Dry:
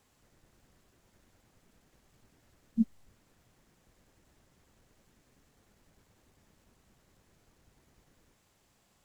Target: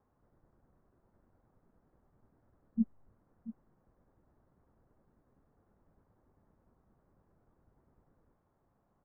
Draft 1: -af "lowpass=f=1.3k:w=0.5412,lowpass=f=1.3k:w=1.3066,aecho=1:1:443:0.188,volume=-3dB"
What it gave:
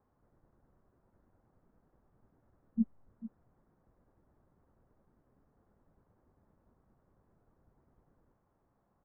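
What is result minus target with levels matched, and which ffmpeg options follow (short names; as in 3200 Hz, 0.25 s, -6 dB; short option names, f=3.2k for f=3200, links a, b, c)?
echo 0.239 s early
-af "lowpass=f=1.3k:w=0.5412,lowpass=f=1.3k:w=1.3066,aecho=1:1:682:0.188,volume=-3dB"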